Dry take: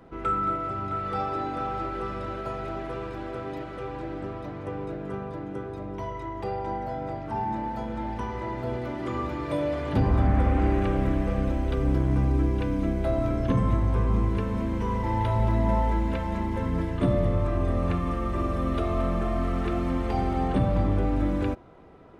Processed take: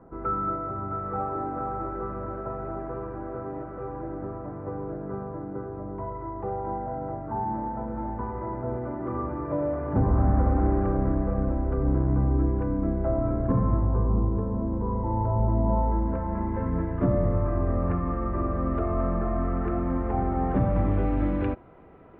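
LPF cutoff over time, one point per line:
LPF 24 dB/oct
13.66 s 1400 Hz
14.19 s 1000 Hz
15.68 s 1000 Hz
16.57 s 1700 Hz
20.37 s 1700 Hz
21.03 s 2700 Hz

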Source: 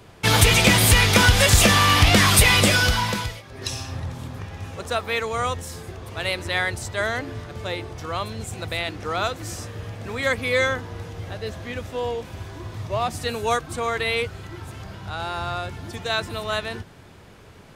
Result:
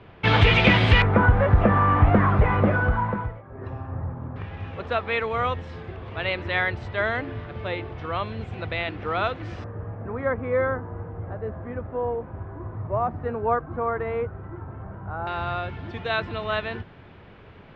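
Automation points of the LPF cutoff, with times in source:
LPF 24 dB/oct
3100 Hz
from 1.02 s 1400 Hz
from 4.36 s 3100 Hz
from 9.64 s 1400 Hz
from 15.27 s 3200 Hz

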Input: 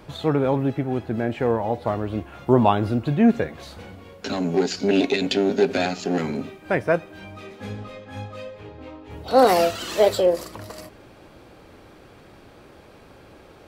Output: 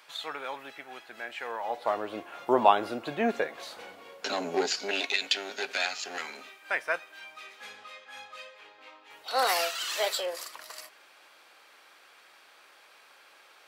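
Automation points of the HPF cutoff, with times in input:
1.45 s 1500 Hz
2 s 560 Hz
4.61 s 560 Hz
5.09 s 1300 Hz

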